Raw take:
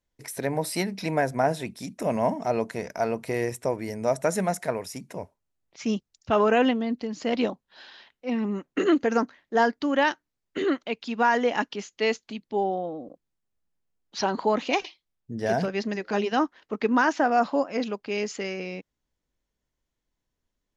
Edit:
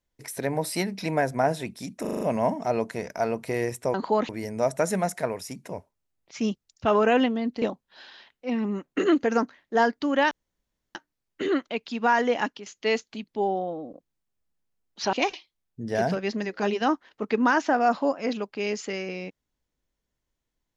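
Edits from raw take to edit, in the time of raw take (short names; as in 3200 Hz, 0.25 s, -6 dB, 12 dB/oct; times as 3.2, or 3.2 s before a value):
2.01 stutter 0.04 s, 6 plays
7.07–7.42 cut
10.11 insert room tone 0.64 s
11.49–11.82 fade out equal-power, to -12.5 dB
14.29–14.64 move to 3.74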